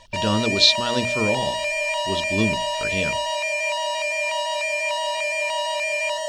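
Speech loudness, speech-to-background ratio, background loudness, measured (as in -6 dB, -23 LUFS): -22.5 LUFS, 0.5 dB, -23.0 LUFS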